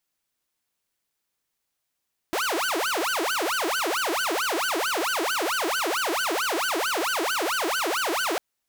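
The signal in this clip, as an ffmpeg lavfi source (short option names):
-f lavfi -i "aevalsrc='0.0891*(2*mod((928.5*t-611.5/(2*PI*4.5)*sin(2*PI*4.5*t)),1)-1)':d=6.05:s=44100"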